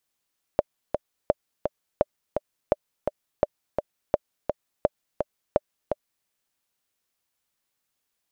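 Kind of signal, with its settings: metronome 169 bpm, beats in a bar 2, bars 8, 594 Hz, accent 5.5 dB -5.5 dBFS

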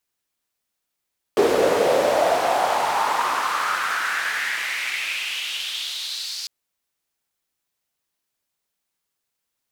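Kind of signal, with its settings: swept filtered noise white, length 5.10 s bandpass, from 410 Hz, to 4700 Hz, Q 4.1, exponential, gain ramp -23.5 dB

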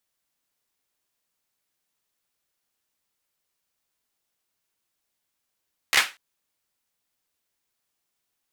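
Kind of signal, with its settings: hand clap length 0.24 s, bursts 4, apart 14 ms, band 2000 Hz, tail 0.26 s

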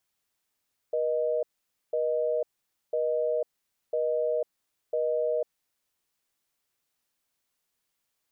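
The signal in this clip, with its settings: call progress tone busy tone, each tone -27 dBFS 4.86 s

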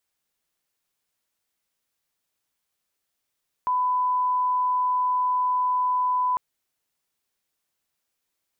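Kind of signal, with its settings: line-up tone -20 dBFS 2.70 s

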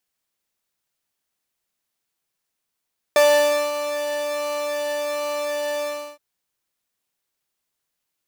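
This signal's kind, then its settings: synth patch with pulse-width modulation D5, interval +7 st, detune 7 cents, oscillator 2 level -6 dB, noise -14 dB, filter highpass, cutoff 290 Hz, Q 1.3, filter envelope 1 oct, attack 1.6 ms, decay 0.55 s, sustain -11.5 dB, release 0.35 s, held 2.67 s, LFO 1.3 Hz, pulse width 40%, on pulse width 6%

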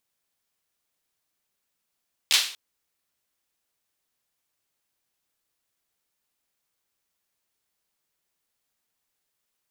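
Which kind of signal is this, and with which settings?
hand clap length 0.24 s, bursts 3, apart 13 ms, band 3400 Hz, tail 0.45 s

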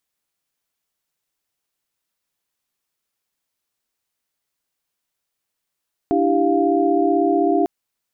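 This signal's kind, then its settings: chord D4/E4/G4/F5 sine, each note -20 dBFS 1.55 s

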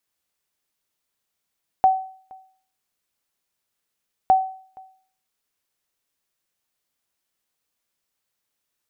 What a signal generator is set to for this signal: sonar ping 759 Hz, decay 0.50 s, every 2.46 s, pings 2, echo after 0.47 s, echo -27 dB -8.5 dBFS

